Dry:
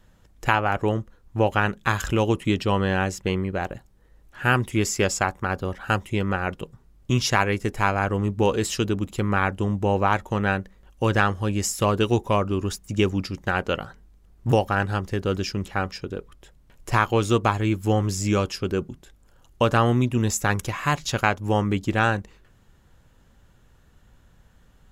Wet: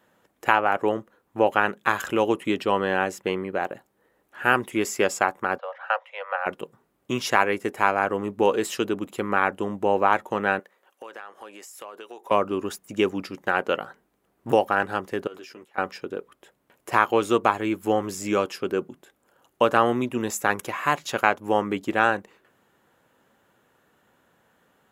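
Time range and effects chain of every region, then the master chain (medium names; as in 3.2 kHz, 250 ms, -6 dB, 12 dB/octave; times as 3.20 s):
5.58–6.46 s: steep high-pass 500 Hz 96 dB/octave + distance through air 260 m
10.59–12.31 s: high-pass 510 Hz + compression 5:1, threshold -39 dBFS
15.27–15.78 s: high-pass 360 Hz 6 dB/octave + level held to a coarse grid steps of 21 dB + doubling 13 ms -5 dB
whole clip: high-pass 320 Hz 12 dB/octave; peaking EQ 5.4 kHz -9 dB 1.6 oct; trim +2.5 dB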